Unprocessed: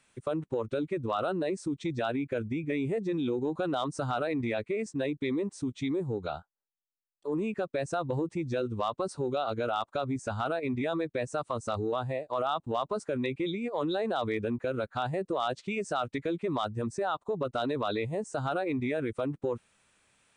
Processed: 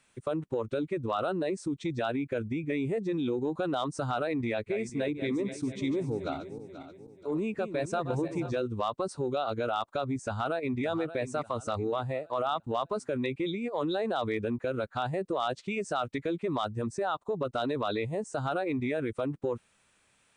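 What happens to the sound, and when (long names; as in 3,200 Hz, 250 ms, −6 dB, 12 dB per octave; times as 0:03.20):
0:04.41–0:08.57: feedback delay that plays each chunk backwards 242 ms, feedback 62%, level −10 dB
0:10.25–0:10.84: delay throw 580 ms, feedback 40%, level −13 dB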